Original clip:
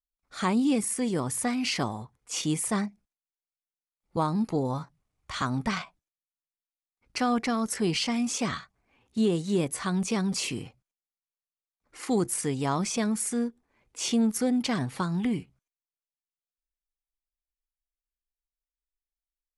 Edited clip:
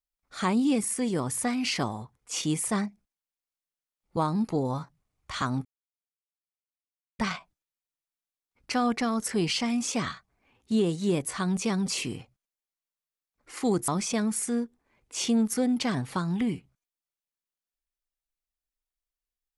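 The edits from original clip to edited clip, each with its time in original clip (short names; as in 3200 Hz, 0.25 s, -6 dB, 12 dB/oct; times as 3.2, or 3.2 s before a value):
5.65 insert silence 1.54 s
12.34–12.72 cut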